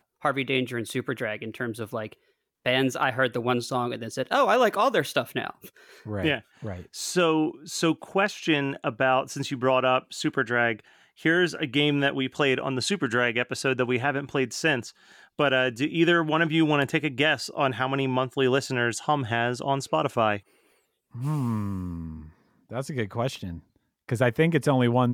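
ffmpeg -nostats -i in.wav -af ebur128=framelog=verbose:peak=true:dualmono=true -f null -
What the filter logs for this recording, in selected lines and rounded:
Integrated loudness:
  I:         -22.4 LUFS
  Threshold: -33.0 LUFS
Loudness range:
  LRA:         5.1 LU
  Threshold: -42.9 LUFS
  LRA low:   -26.2 LUFS
  LRA high:  -21.0 LUFS
True peak:
  Peak:       -9.7 dBFS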